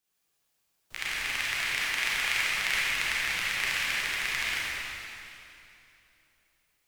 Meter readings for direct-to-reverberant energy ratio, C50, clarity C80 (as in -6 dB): -9.0 dB, -6.0 dB, -3.0 dB